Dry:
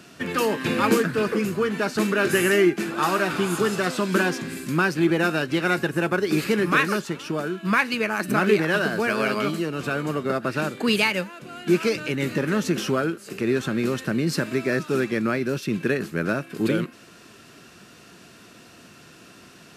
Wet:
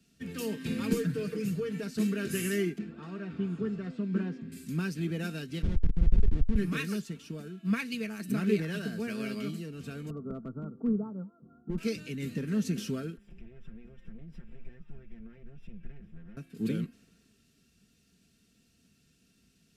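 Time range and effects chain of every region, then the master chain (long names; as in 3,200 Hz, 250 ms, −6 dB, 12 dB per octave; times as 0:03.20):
0:00.92–0:01.83: comb filter 6.6 ms, depth 86% + downward compressor 2.5 to 1, threshold −18 dBFS
0:02.78–0:04.52: head-to-tape spacing loss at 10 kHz 28 dB + notch filter 6,100 Hz, Q 23
0:05.62–0:06.56: comparator with hysteresis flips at −20.5 dBFS + head-to-tape spacing loss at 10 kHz 24 dB
0:10.10–0:11.78: Chebyshev low-pass filter 1,400 Hz, order 8 + gain into a clipping stage and back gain 16.5 dB
0:13.17–0:16.37: lower of the sound and its delayed copy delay 5.6 ms + Savitzky-Golay smoothing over 25 samples + downward compressor 3 to 1, threshold −37 dBFS
whole clip: guitar amp tone stack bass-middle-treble 10-0-1; comb filter 4.4 ms, depth 46%; multiband upward and downward expander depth 40%; level +9 dB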